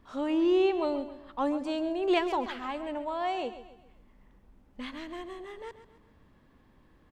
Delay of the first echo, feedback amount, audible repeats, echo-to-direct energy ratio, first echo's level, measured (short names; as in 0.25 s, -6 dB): 0.134 s, 41%, 3, -12.0 dB, -13.0 dB